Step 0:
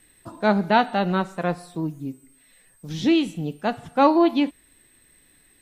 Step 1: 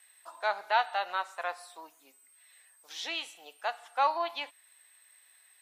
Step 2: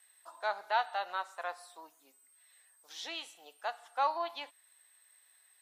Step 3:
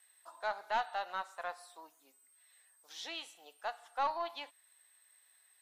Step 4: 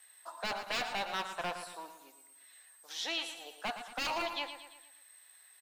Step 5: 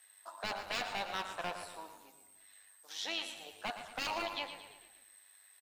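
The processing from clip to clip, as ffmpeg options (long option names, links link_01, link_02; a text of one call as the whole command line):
ffmpeg -i in.wav -filter_complex "[0:a]asplit=2[link_01][link_02];[link_02]alimiter=limit=-16.5dB:level=0:latency=1:release=304,volume=-0.5dB[link_03];[link_01][link_03]amix=inputs=2:normalize=0,highpass=frequency=730:width=0.5412,highpass=frequency=730:width=1.3066,volume=-8.5dB" out.wav
ffmpeg -i in.wav -af "equalizer=frequency=2400:width_type=o:width=0.66:gain=-4.5,volume=-3.5dB" out.wav
ffmpeg -i in.wav -af "aeval=exprs='(tanh(12.6*val(0)+0.2)-tanh(0.2))/12.6':channel_layout=same,volume=-1.5dB" out.wav
ffmpeg -i in.wav -filter_complex "[0:a]acrossover=split=1900[link_01][link_02];[link_01]aeval=exprs='0.0133*(abs(mod(val(0)/0.0133+3,4)-2)-1)':channel_layout=same[link_03];[link_03][link_02]amix=inputs=2:normalize=0,aecho=1:1:114|228|342|456|570:0.316|0.152|0.0729|0.035|0.0168,volume=7dB" out.wav
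ffmpeg -i in.wav -filter_complex "[0:a]tremolo=f=100:d=0.519,asplit=5[link_01][link_02][link_03][link_04][link_05];[link_02]adelay=146,afreqshift=-80,volume=-17dB[link_06];[link_03]adelay=292,afreqshift=-160,volume=-23.2dB[link_07];[link_04]adelay=438,afreqshift=-240,volume=-29.4dB[link_08];[link_05]adelay=584,afreqshift=-320,volume=-35.6dB[link_09];[link_01][link_06][link_07][link_08][link_09]amix=inputs=5:normalize=0" out.wav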